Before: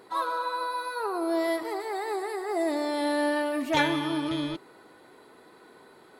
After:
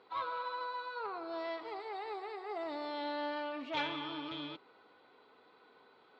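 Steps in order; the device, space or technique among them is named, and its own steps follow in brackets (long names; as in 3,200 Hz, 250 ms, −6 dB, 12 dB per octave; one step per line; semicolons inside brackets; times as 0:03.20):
guitar amplifier (tube saturation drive 21 dB, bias 0.35; bass and treble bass −13 dB, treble +6 dB; loudspeaker in its box 84–3,500 Hz, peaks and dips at 92 Hz +8 dB, 350 Hz −9 dB, 620 Hz −6 dB, 950 Hz −3 dB, 1,800 Hz −9 dB)
level −4 dB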